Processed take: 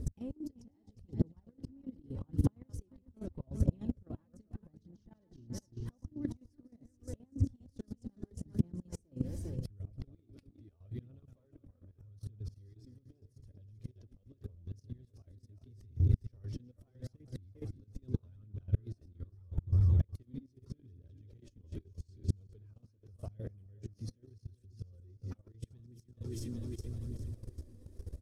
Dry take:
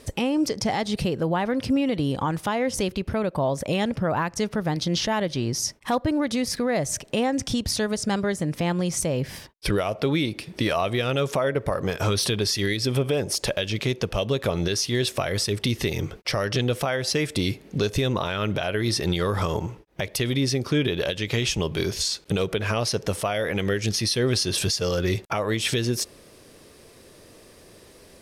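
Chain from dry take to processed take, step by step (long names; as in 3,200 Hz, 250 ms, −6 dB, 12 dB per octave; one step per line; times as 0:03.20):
feedback delay that plays each chunk backwards 200 ms, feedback 67%, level −8 dB
low shelf with overshoot 120 Hz +8 dB, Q 3
downward compressor 6 to 1, threshold −26 dBFS, peak gain reduction 14.5 dB
pitch-shifted copies added −4 semitones −18 dB, +4 semitones −17 dB
gate with flip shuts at −20 dBFS, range −29 dB
drawn EQ curve 130 Hz 0 dB, 240 Hz +2 dB, 700 Hz −19 dB, 1,700 Hz −23 dB, 2,600 Hz −27 dB, 6,400 Hz −18 dB
phase shifter 0.81 Hz, delay 4.2 ms, feedback 44%
output level in coarse steps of 15 dB
level +5.5 dB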